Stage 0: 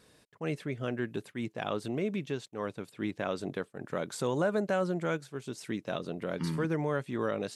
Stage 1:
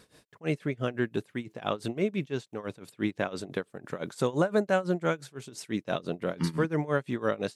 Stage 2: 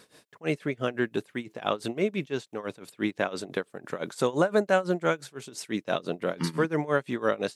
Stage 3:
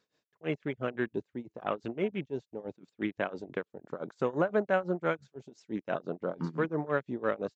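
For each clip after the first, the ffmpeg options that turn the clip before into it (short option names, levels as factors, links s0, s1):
-af "tremolo=f=5.9:d=0.89,volume=2"
-af "highpass=f=250:p=1,volume=1.5"
-af "afwtdn=0.0158,aresample=16000,aresample=44100,volume=0.596"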